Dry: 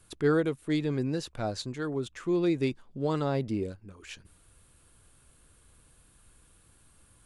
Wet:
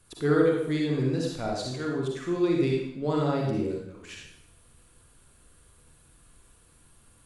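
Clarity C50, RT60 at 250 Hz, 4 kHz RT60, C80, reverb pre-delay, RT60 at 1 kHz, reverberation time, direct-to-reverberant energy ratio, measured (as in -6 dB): 0.5 dB, 0.75 s, 0.70 s, 4.0 dB, 39 ms, 0.70 s, 0.70 s, -2.0 dB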